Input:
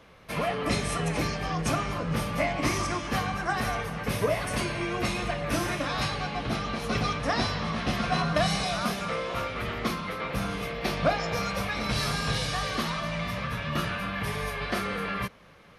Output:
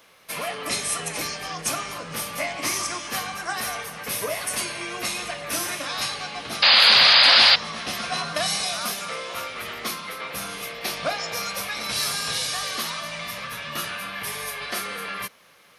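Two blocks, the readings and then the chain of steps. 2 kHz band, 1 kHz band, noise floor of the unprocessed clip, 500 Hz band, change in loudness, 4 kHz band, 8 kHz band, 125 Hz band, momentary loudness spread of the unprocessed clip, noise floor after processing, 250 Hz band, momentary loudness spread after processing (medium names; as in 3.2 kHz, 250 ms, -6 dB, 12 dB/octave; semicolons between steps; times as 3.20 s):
+6.5 dB, +1.0 dB, -46 dBFS, -2.5 dB, +7.0 dB, +14.0 dB, +10.5 dB, -12.0 dB, 5 LU, -47 dBFS, -8.5 dB, 18 LU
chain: painted sound noise, 6.62–7.56 s, 510–5000 Hz -18 dBFS; RIAA curve recording; trim -1 dB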